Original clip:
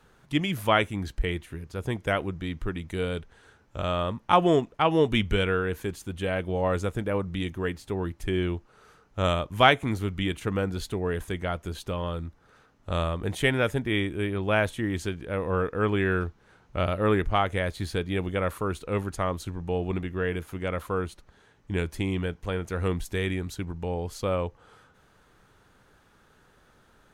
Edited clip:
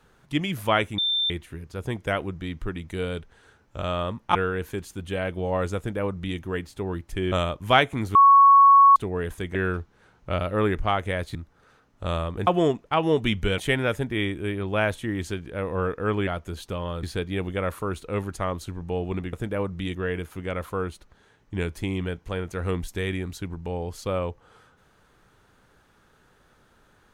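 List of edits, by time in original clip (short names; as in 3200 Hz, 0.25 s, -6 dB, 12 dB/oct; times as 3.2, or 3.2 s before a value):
0.98–1.3 bleep 3570 Hz -21 dBFS
4.35–5.46 move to 13.33
6.88–7.5 copy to 20.12
8.43–9.22 cut
10.05–10.86 bleep 1110 Hz -10 dBFS
11.45–12.21 swap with 16.02–17.82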